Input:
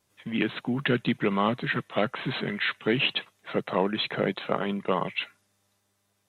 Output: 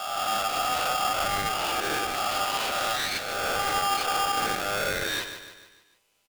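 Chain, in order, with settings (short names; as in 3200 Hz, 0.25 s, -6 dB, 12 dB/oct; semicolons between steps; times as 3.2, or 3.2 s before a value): spectral swells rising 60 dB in 1.30 s; 3.59–4.46 bell 190 Hz +12.5 dB 0.72 oct; compressor, threshold -23 dBFS, peak gain reduction 9 dB; high-pass sweep 220 Hz -> 1500 Hz, 4.46–5.84; soft clip -23.5 dBFS, distortion -11 dB; feedback echo 0.149 s, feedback 48%, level -9.5 dB; polarity switched at an audio rate 1000 Hz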